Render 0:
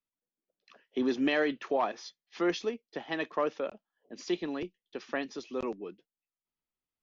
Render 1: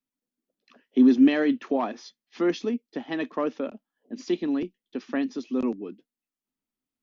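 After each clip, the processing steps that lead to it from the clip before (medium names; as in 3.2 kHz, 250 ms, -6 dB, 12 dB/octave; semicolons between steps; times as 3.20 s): peaking EQ 250 Hz +15 dB 0.7 oct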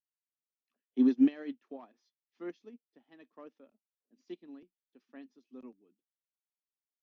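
upward expansion 2.5:1, over -30 dBFS; trim -5.5 dB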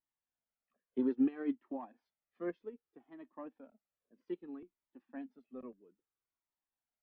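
low-pass 1.6 kHz 12 dB/octave; compression 4:1, threshold -28 dBFS, peak gain reduction 8.5 dB; Shepard-style flanger falling 0.62 Hz; trim +9.5 dB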